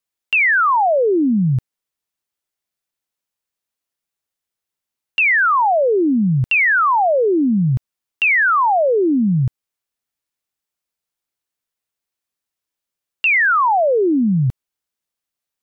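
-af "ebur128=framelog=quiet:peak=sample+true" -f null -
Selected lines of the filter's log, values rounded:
Integrated loudness:
  I:         -15.3 LUFS
  Threshold: -25.5 LUFS
Loudness range:
  LRA:        10.0 LU
  Threshold: -38.0 LUFS
  LRA low:   -25.2 LUFS
  LRA high:  -15.2 LUFS
Sample peak:
  Peak:      -11.1 dBFS
True peak:
  Peak:      -11.0 dBFS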